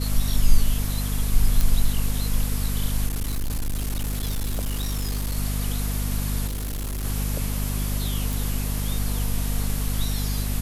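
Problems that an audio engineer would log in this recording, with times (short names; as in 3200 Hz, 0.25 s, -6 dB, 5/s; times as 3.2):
hum 50 Hz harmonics 5 -26 dBFS
1.61 pop
3.06–5.36 clipped -22.5 dBFS
6.46–7.05 clipped -26 dBFS
8.33 pop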